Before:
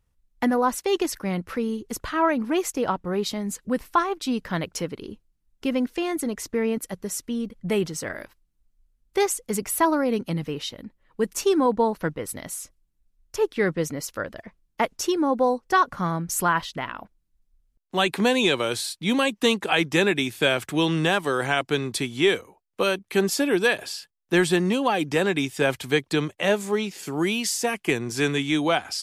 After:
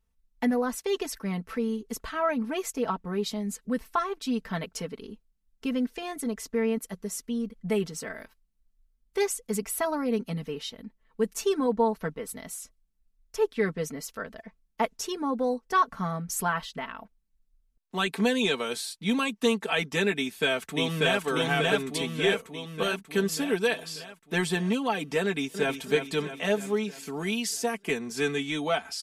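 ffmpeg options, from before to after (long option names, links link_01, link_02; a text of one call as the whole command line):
ffmpeg -i in.wav -filter_complex "[0:a]asplit=2[link_01][link_02];[link_02]afade=type=in:start_time=20.17:duration=0.01,afade=type=out:start_time=21.23:duration=0.01,aecho=0:1:590|1180|1770|2360|2950|3540|4130|4720|5310:0.944061|0.566437|0.339862|0.203917|0.12235|0.0734102|0.0440461|0.0264277|0.0158566[link_03];[link_01][link_03]amix=inputs=2:normalize=0,asplit=2[link_04][link_05];[link_05]afade=type=in:start_time=25.22:duration=0.01,afade=type=out:start_time=25.82:duration=0.01,aecho=0:1:320|640|960|1280|1600|1920|2240|2560:0.398107|0.238864|0.143319|0.0859911|0.0515947|0.0309568|0.0185741|0.0111445[link_06];[link_04][link_06]amix=inputs=2:normalize=0,aecho=1:1:4.5:0.77,volume=-7dB" out.wav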